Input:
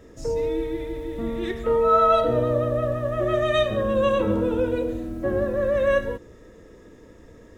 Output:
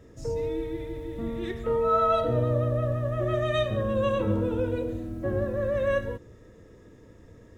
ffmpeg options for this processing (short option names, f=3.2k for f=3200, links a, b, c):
-af "equalizer=f=110:w=1.2:g=8.5,volume=-5.5dB"